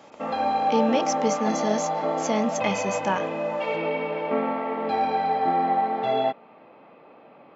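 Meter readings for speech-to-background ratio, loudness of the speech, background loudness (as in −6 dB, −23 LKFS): −1.5 dB, −27.5 LKFS, −26.0 LKFS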